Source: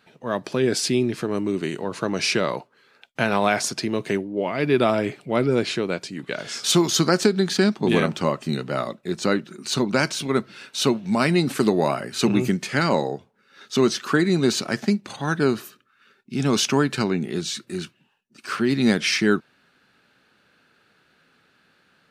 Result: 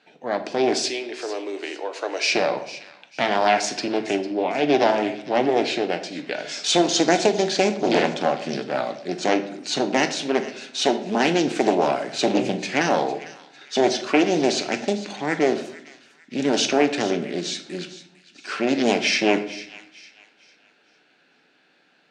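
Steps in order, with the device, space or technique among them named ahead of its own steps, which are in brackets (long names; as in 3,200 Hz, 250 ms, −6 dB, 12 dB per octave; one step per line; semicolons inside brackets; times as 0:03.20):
0:00.77–0:02.26: high-pass filter 430 Hz 24 dB per octave
full-range speaker at full volume (highs frequency-modulated by the lows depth 0.86 ms; loudspeaker in its box 260–7,400 Hz, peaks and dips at 300 Hz +5 dB, 740 Hz +6 dB, 1,200 Hz −8 dB, 2,500 Hz +3 dB)
delay with a high-pass on its return 452 ms, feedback 34%, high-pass 1,600 Hz, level −15 dB
rectangular room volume 150 cubic metres, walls mixed, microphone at 0.39 metres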